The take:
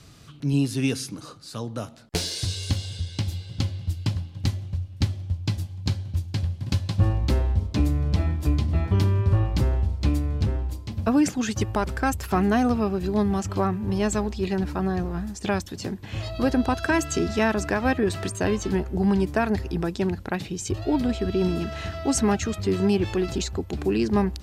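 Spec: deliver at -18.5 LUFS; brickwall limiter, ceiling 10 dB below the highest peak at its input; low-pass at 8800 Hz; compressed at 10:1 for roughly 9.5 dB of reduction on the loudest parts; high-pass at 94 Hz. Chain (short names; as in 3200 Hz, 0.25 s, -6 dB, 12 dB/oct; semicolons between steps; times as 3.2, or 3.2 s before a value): HPF 94 Hz; LPF 8800 Hz; compressor 10:1, threshold -27 dBFS; gain +16 dB; limiter -8.5 dBFS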